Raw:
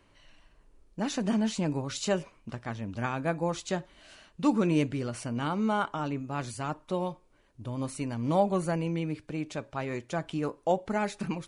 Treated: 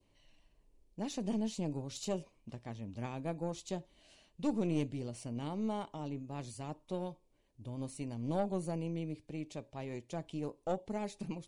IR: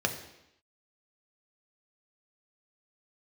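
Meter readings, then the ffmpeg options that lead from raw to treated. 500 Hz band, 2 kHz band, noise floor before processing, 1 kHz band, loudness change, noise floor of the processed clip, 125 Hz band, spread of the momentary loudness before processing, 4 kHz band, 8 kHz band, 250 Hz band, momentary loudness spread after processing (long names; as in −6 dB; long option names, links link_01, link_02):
−8.5 dB, −15.5 dB, −63 dBFS, −11.5 dB, −8.5 dB, −72 dBFS, −7.0 dB, 10 LU, −9.5 dB, −8.0 dB, −7.5 dB, 10 LU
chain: -af "equalizer=frequency=1400:width=2.1:gain=-14.5,aeval=exprs='(tanh(7.94*val(0)+0.5)-tanh(0.5))/7.94':channel_layout=same,adynamicequalizer=threshold=0.00224:dfrequency=1800:dqfactor=1.1:tfrequency=1800:tqfactor=1.1:attack=5:release=100:ratio=0.375:range=2.5:mode=cutabove:tftype=bell,volume=-5.5dB"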